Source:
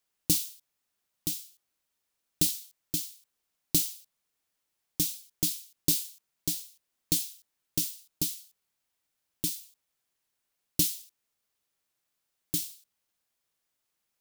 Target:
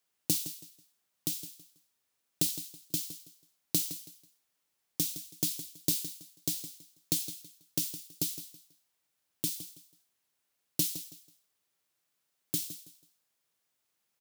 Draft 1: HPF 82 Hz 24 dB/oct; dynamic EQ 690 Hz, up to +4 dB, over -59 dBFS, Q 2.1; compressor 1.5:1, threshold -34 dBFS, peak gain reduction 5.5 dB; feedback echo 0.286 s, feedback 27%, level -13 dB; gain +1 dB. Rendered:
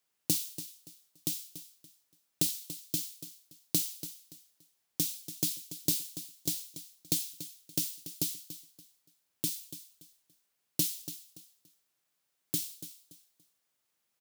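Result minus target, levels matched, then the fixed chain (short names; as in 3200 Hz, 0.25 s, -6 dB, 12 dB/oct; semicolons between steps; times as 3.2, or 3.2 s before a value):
echo 0.123 s late
HPF 82 Hz 24 dB/oct; dynamic EQ 690 Hz, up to +4 dB, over -59 dBFS, Q 2.1; compressor 1.5:1, threshold -34 dBFS, peak gain reduction 5.5 dB; feedback echo 0.163 s, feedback 27%, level -13 dB; gain +1 dB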